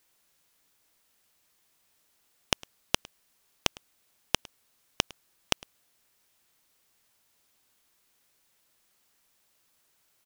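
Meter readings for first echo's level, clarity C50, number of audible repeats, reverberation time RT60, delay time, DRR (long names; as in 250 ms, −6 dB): −23.0 dB, no reverb audible, 1, no reverb audible, 106 ms, no reverb audible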